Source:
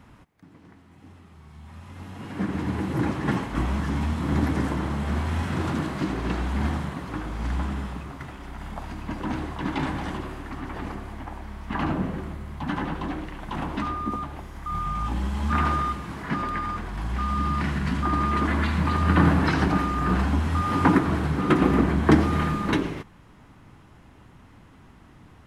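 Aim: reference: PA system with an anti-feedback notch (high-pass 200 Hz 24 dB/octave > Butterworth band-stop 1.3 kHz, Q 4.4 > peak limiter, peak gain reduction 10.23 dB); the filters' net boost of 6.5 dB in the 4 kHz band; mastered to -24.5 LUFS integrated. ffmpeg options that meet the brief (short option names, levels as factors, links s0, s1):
-af "highpass=f=200:w=0.5412,highpass=f=200:w=1.3066,asuperstop=centerf=1300:order=8:qfactor=4.4,equalizer=f=4000:t=o:g=8.5,volume=1.88,alimiter=limit=0.316:level=0:latency=1"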